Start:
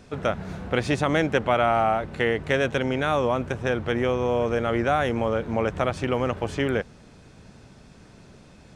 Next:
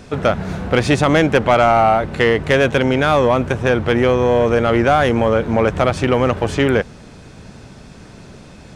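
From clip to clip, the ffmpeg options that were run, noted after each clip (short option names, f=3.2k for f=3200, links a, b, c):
-af "aeval=exprs='0.398*(cos(1*acos(clip(val(0)/0.398,-1,1)))-cos(1*PI/2))+0.0355*(cos(5*acos(clip(val(0)/0.398,-1,1)))-cos(5*PI/2))':c=same,volume=7dB"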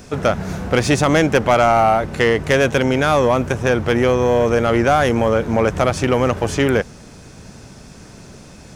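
-af "aexciter=amount=1.6:drive=7.9:freq=5.2k,volume=-1dB"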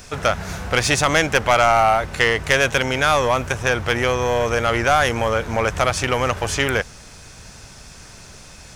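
-af "equalizer=f=250:t=o:w=2.8:g=-13.5,volume=4dB"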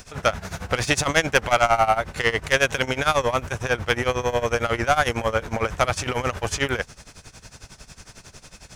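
-af "tremolo=f=11:d=0.86"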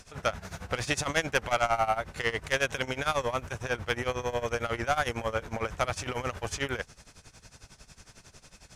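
-af "volume=-8dB" -ar 32000 -c:a aac -b:a 96k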